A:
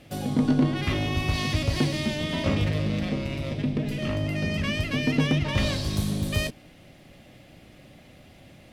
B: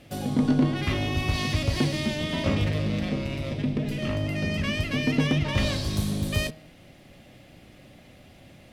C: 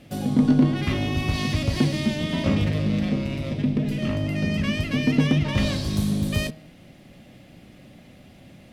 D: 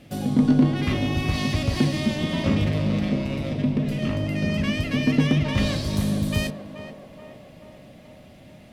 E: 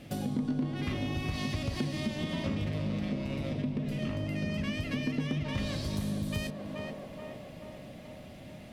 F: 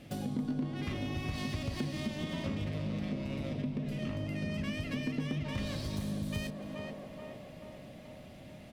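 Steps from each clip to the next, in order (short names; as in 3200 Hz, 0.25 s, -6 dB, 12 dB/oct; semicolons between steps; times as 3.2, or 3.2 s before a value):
de-hum 157.7 Hz, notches 31
bell 200 Hz +6 dB 1.1 oct
narrowing echo 0.431 s, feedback 69%, band-pass 710 Hz, level -7.5 dB
compressor 3:1, threshold -33 dBFS, peak gain reduction 15 dB
tracing distortion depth 0.025 ms; echo 0.279 s -18.5 dB; gain -3 dB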